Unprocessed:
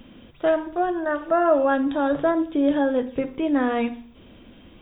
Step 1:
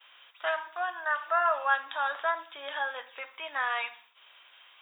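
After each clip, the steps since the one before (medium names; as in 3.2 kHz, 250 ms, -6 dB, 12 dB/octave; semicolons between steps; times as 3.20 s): high-pass 990 Hz 24 dB/octave; expander -57 dBFS; trim +2 dB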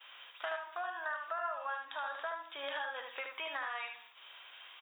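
compression 6:1, threshold -39 dBFS, peak gain reduction 18 dB; delay 75 ms -5.5 dB; trim +1.5 dB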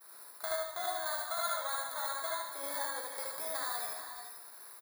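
bit-reversed sample order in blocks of 16 samples; early reflections 67 ms -5 dB, 78 ms -5 dB; gated-style reverb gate 490 ms rising, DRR 8 dB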